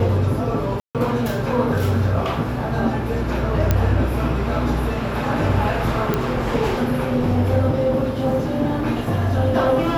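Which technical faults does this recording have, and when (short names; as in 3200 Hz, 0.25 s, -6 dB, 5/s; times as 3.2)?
0.8–0.95 gap 0.147 s
3.71 pop -4 dBFS
6.14 pop -7 dBFS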